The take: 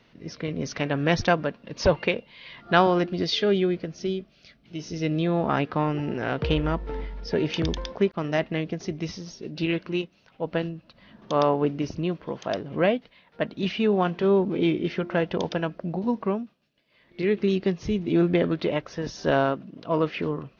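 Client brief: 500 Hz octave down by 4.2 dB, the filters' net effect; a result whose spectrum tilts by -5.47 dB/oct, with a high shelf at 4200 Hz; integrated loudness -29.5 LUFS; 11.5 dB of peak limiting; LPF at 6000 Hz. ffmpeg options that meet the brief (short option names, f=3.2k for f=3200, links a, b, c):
-af "lowpass=6k,equalizer=f=500:t=o:g=-5.5,highshelf=f=4.2k:g=-6,volume=2dB,alimiter=limit=-17.5dB:level=0:latency=1"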